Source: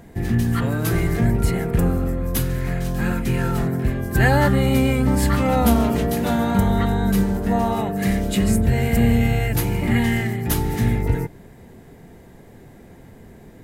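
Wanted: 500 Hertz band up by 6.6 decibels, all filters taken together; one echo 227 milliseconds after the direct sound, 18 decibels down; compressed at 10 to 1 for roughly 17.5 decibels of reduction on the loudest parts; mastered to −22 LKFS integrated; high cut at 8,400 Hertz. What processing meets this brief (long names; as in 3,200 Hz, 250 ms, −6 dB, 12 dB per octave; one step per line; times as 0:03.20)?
low-pass filter 8,400 Hz
parametric band 500 Hz +8 dB
downward compressor 10 to 1, threshold −28 dBFS
single-tap delay 227 ms −18 dB
level +10.5 dB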